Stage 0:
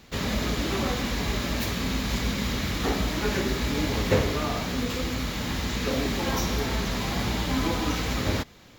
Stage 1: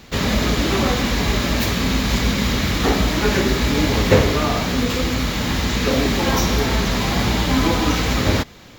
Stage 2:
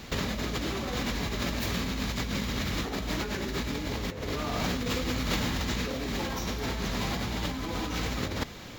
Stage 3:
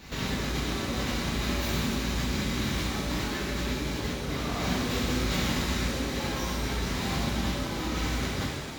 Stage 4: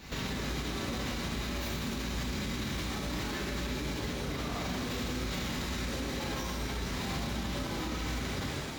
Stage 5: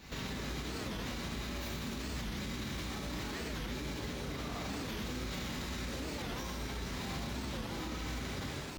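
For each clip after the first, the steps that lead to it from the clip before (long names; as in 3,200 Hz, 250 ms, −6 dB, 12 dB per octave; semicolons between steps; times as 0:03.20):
parametric band 11,000 Hz −2.5 dB 0.69 octaves; level +8.5 dB
compressor whose output falls as the input rises −25 dBFS, ratio −1; level −6.5 dB
reverb with rising layers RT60 1.3 s, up +7 semitones, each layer −8 dB, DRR −7 dB; level −7 dB
brickwall limiter −25 dBFS, peak gain reduction 9 dB; level −1 dB
wow of a warped record 45 rpm, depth 250 cents; level −4.5 dB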